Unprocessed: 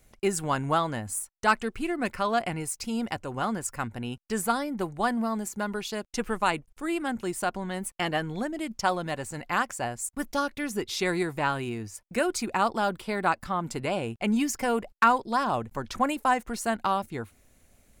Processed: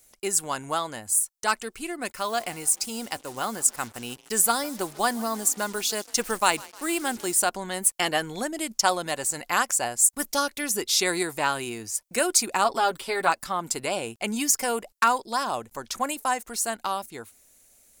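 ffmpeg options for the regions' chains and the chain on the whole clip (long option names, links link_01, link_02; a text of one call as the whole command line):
ffmpeg -i in.wav -filter_complex "[0:a]asettb=1/sr,asplit=3[link_01][link_02][link_03];[link_01]atrim=end=2.124[link_04];[link_02]atrim=start=2.12:end=7.35,asetpts=PTS-STARTPTS,afade=type=in:duration=0.004:curve=qsin,afade=type=out:start_time=5.226:duration=0.004:curve=qsin,agate=range=-33dB:threshold=-40dB:ratio=3:release=100:detection=peak,asplit=5[link_05][link_06][link_07][link_08][link_09];[link_06]adelay=152,afreqshift=35,volume=-23dB[link_10];[link_07]adelay=304,afreqshift=70,volume=-28dB[link_11];[link_08]adelay=456,afreqshift=105,volume=-33.1dB[link_12];[link_09]adelay=608,afreqshift=140,volume=-38.1dB[link_13];[link_05][link_10][link_11][link_12][link_13]amix=inputs=5:normalize=0,atrim=end_sample=230643,acrusher=bits=7:mix=0:aa=0.5[link_14];[link_03]atrim=start=7.346[link_15];[link_04][link_14]acrossfade=duration=0.004:curve1=hsin:curve2=qsin[link_16];[link_16][link_15]acrossfade=duration=0.004:curve1=qsin:curve2=hsin,asettb=1/sr,asplit=3[link_17][link_18][link_19];[link_17]atrim=end=12.644[link_20];[link_18]atrim=start=12.64:end=13.3,asetpts=PTS-STARTPTS,afade=type=in:duration=0.004:curve=qsin,afade=type=out:start_time=0.656:duration=0.004:curve=qsin,acrossover=split=4200[link_21][link_22];[link_22]acompressor=threshold=-53dB:ratio=4:attack=1:release=60[link_23];[link_21][link_23]amix=inputs=2:normalize=0,aecho=1:1:7.3:0.75,atrim=end_sample=29106[link_24];[link_19]atrim=start=13.296[link_25];[link_20][link_24]acrossfade=duration=0.004:curve1=hsin:curve2=qsin[link_26];[link_26][link_25]acrossfade=duration=0.004:curve1=qsin:curve2=hsin,bass=frequency=250:gain=-10,treble=frequency=4000:gain=13,dynaudnorm=framelen=350:gausssize=21:maxgain=11.5dB,volume=-2.5dB" out.wav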